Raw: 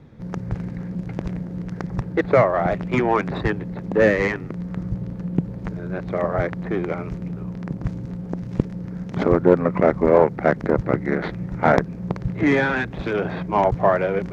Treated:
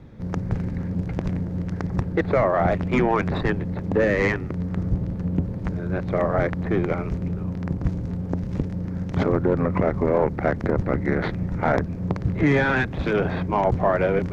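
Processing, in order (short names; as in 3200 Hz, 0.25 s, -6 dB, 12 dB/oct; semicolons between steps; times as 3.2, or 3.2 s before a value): octaver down 1 oct, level -3 dB; limiter -11.5 dBFS, peak gain reduction 9.5 dB; gain +1 dB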